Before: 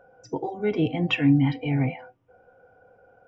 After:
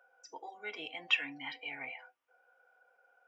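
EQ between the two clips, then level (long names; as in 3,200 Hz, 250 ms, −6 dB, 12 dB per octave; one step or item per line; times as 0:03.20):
high-pass filter 1,300 Hz 12 dB per octave
−3.0 dB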